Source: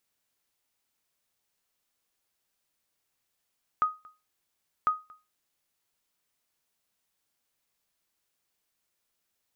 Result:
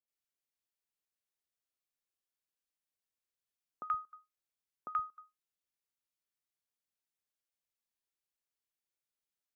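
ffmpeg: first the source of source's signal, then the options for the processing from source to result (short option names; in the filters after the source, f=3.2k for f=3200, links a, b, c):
-f lavfi -i "aevalsrc='0.141*(sin(2*PI*1250*mod(t,1.05))*exp(-6.91*mod(t,1.05)/0.26)+0.0531*sin(2*PI*1250*max(mod(t,1.05)-0.23,0))*exp(-6.91*max(mod(t,1.05)-0.23,0)/0.26))':d=2.1:s=44100"
-filter_complex "[0:a]afftdn=nr=15:nf=-52,alimiter=limit=-23dB:level=0:latency=1:release=112,acrossover=split=160|900[a][b][c];[c]adelay=80[d];[a]adelay=120[e];[e][b][d]amix=inputs=3:normalize=0"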